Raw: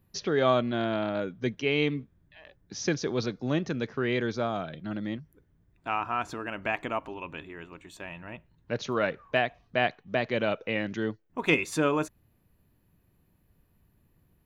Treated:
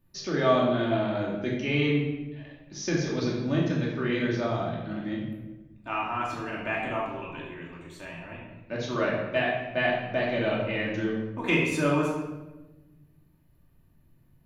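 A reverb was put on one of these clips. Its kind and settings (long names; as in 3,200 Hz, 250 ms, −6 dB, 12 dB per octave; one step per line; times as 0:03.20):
rectangular room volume 590 cubic metres, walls mixed, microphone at 2.6 metres
level −5.5 dB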